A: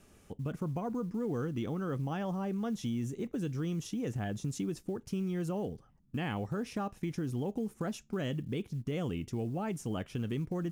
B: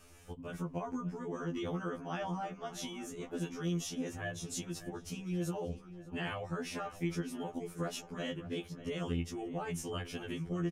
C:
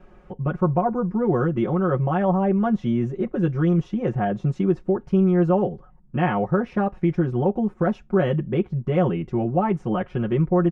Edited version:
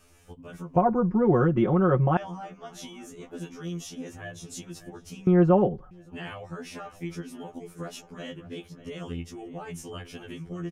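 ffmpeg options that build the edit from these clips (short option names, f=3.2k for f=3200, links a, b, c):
-filter_complex "[2:a]asplit=2[a][b];[1:a]asplit=3[c][d][e];[c]atrim=end=0.762[f];[a]atrim=start=0.758:end=2.172[g];[d]atrim=start=2.168:end=5.272[h];[b]atrim=start=5.268:end=5.912[i];[e]atrim=start=5.908[j];[f][g]acrossfade=d=0.004:c1=hsin:c2=hsin[k];[k][h]acrossfade=d=0.004:c1=hsin:c2=hsin[l];[l][i]acrossfade=d=0.004:c1=hsin:c2=hsin[m];[m][j]acrossfade=d=0.004:c1=hsin:c2=hsin"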